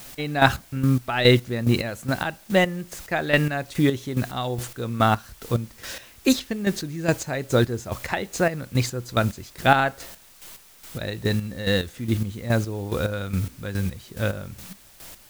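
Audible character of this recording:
a quantiser's noise floor 8 bits, dither triangular
chopped level 2.4 Hz, depth 65%, duty 35%

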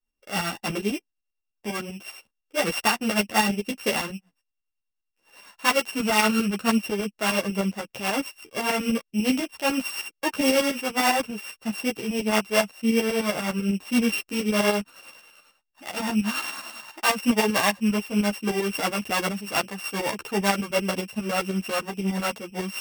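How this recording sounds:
a buzz of ramps at a fixed pitch in blocks of 16 samples
tremolo saw up 10 Hz, depth 70%
a shimmering, thickened sound

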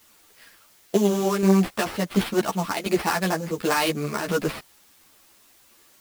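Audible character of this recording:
aliases and images of a low sample rate 6,800 Hz, jitter 20%
tremolo saw down 1.4 Hz, depth 55%
a quantiser's noise floor 10 bits, dither triangular
a shimmering, thickened sound

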